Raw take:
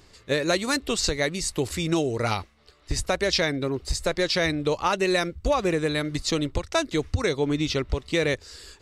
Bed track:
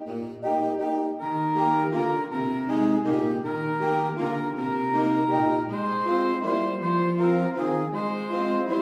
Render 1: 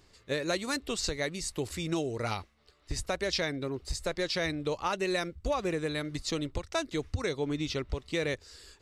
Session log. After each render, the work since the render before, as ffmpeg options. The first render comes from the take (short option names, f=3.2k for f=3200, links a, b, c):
-af "volume=-7.5dB"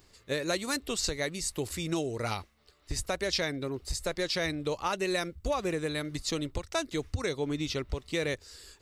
-af "highshelf=f=11k:g=12"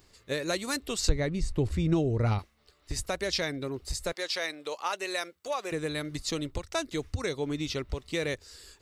-filter_complex "[0:a]asettb=1/sr,asplit=3[a][b][c];[a]atrim=end=1.094[d];[b]atrim=start=1.09:end=2.39,asetpts=PTS-STARTPTS,afade=t=in:d=0.004:c=qsin,afade=t=out:st=1.296:d=0.004:c=qsin,aemphasis=mode=reproduction:type=riaa[e];[c]atrim=start=2.386[f];[d][e]acrossfade=d=0.004:c1=hsin:c2=qsin[g];[g][f]acrossfade=d=0.004:c1=qsin:c2=hsin,asettb=1/sr,asplit=3[h][i][j];[h]atrim=end=4.124[k];[i]atrim=start=4.12:end=5.72,asetpts=PTS-STARTPTS,afade=t=in:d=0.004:c=qsin,afade=t=out:st=1.596:d=0.004:c=qsin,highpass=530[l];[j]atrim=start=5.716[m];[k][l]acrossfade=d=0.004:c1=hsin:c2=qsin[n];[n][m]acrossfade=d=0.004:c1=qsin:c2=hsin"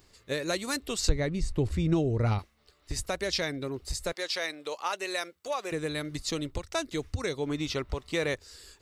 -filter_complex "[0:a]asettb=1/sr,asplit=3[a][b][c];[a]atrim=end=7.474[d];[b]atrim=start=7.47:end=8.39,asetpts=PTS-STARTPTS,afade=t=in:d=0.004:c=qsin,afade=t=out:st=0.916:d=0.004:c=qsin,equalizer=f=1k:w=0.88:g=5.5[e];[c]atrim=start=8.386[f];[d][e]acrossfade=d=0.004:c1=hsin:c2=qsin[g];[g][f]acrossfade=d=0.004:c1=qsin:c2=hsin"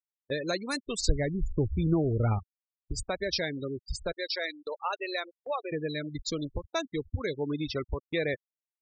-af "afftfilt=real='re*gte(hypot(re,im),0.0355)':imag='im*gte(hypot(re,im),0.0355)':win_size=1024:overlap=0.75,agate=range=-20dB:threshold=-47dB:ratio=16:detection=peak"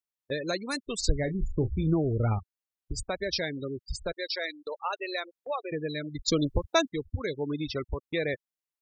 -filter_complex "[0:a]asettb=1/sr,asplit=3[a][b][c];[a]atrim=end=1.204[d];[b]atrim=start=1.2:end=1.93,asetpts=PTS-STARTPTS,afade=t=in:d=0.004:c=qsin,afade=t=out:st=0.726:d=0.004:c=qsin,asplit=2[e][f];[f]adelay=32,volume=-12.5dB[g];[e][g]amix=inputs=2:normalize=0,atrim=end_sample=32193[h];[c]atrim=start=1.926[i];[d][h]acrossfade=d=0.004:c1=hsin:c2=qsin[j];[j][i]acrossfade=d=0.004:c1=qsin:c2=hsin,asplit=3[k][l][m];[k]atrim=end=6.282[n];[l]atrim=start=6.278:end=6.892,asetpts=PTS-STARTPTS,volume=7.5dB[o];[m]atrim=start=6.888[p];[n][o]acrossfade=d=0.004:c1=hsin:c2=hsin[q];[q][p]acrossfade=d=0.004:c1=hsin:c2=hsin"